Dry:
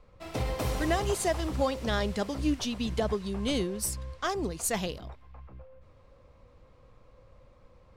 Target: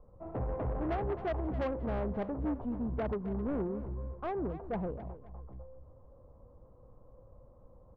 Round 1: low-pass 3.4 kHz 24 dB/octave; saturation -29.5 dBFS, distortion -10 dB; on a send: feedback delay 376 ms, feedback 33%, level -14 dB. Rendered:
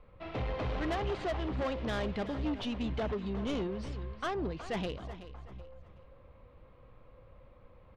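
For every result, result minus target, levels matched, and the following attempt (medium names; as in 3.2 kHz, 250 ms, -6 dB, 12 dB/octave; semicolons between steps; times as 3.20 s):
4 kHz band +16.5 dB; echo 112 ms late
low-pass 970 Hz 24 dB/octave; saturation -29.5 dBFS, distortion -10 dB; on a send: feedback delay 376 ms, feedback 33%, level -14 dB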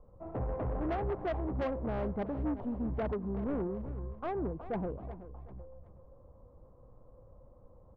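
echo 112 ms late
low-pass 970 Hz 24 dB/octave; saturation -29.5 dBFS, distortion -10 dB; on a send: feedback delay 264 ms, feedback 33%, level -14 dB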